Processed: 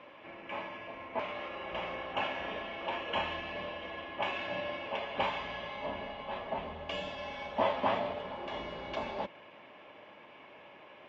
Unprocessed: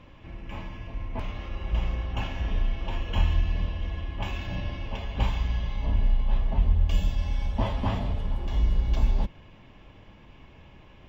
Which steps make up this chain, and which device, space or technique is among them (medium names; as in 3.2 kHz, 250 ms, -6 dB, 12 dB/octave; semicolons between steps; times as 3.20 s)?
tin-can telephone (band-pass 450–2900 Hz; small resonant body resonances 590/2300 Hz, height 6 dB); trim +4 dB